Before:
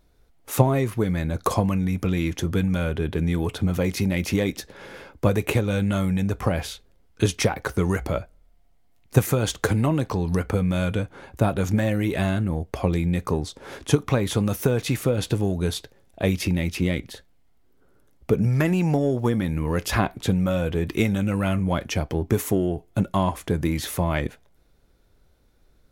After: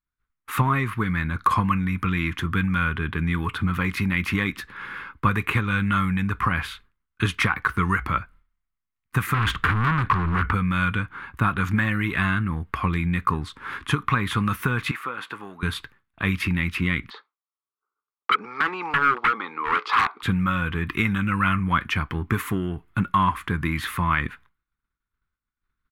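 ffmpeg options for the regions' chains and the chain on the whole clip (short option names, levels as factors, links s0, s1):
-filter_complex "[0:a]asettb=1/sr,asplit=3[s0][s1][s2];[s0]atrim=end=9.344[s3];[s1]atrim=start=9.34:end=10.53,asetpts=PTS-STARTPTS,afade=t=in:d=0.004:c=qsin,afade=t=out:st=1.186:d=0.004:c=qsin,bass=f=250:g=6,treble=f=4000:g=-8,acontrast=73,volume=10.6,asoftclip=hard,volume=0.0944[s4];[s2]atrim=start=10.526[s5];[s3][s4]acrossfade=d=0.004:c1=hsin:c2=qsin[s6];[s6][s5]acrossfade=d=0.004:c1=qsin:c2=hsin,asettb=1/sr,asplit=3[s7][s8][s9];[s7]atrim=end=14.914[s10];[s8]atrim=start=14.91:end=15.63,asetpts=PTS-STARTPTS,afade=t=in:d=0.004:c=qsin,afade=t=out:st=0.716:d=0.004:c=qsin,highpass=880,tiltshelf=f=1200:g=9.5[s11];[s9]atrim=start=15.626[s12];[s10][s11]acrossfade=d=0.004:c1=hsin:c2=qsin[s13];[s13][s12]acrossfade=d=0.004:c1=qsin:c2=hsin,asettb=1/sr,asplit=3[s14][s15][s16];[s14]atrim=end=17.104[s17];[s15]atrim=start=17.1:end=20.22,asetpts=PTS-STARTPTS,afade=t=in:d=0.004:c=qsin,afade=t=out:st=3.116:d=0.004:c=qsin,highpass=f=360:w=0.5412,highpass=f=360:w=1.3066,equalizer=f=440:t=q:w=4:g=9,equalizer=f=830:t=q:w=4:g=9,equalizer=f=1200:t=q:w=4:g=8,equalizer=f=1700:t=q:w=4:g=-10,equalizer=f=2800:t=q:w=4:g=-7,equalizer=f=4400:t=q:w=4:g=4,lowpass=f=5000:w=0.5412,lowpass=f=5000:w=1.3066,aeval=exprs='0.1*(abs(mod(val(0)/0.1+3,4)-2)-1)':c=same[s18];[s16]atrim=start=20.216[s19];[s17][s18]acrossfade=d=0.004:c1=hsin:c2=qsin[s20];[s20][s19]acrossfade=d=0.004:c1=qsin:c2=hsin,agate=range=0.0224:threshold=0.00631:ratio=3:detection=peak,firequalizer=gain_entry='entry(220,0);entry(600,-16);entry(1100,14);entry(5900,-11);entry(9300,-5)':delay=0.05:min_phase=1,alimiter=level_in=2.11:limit=0.891:release=50:level=0:latency=1,volume=0.422"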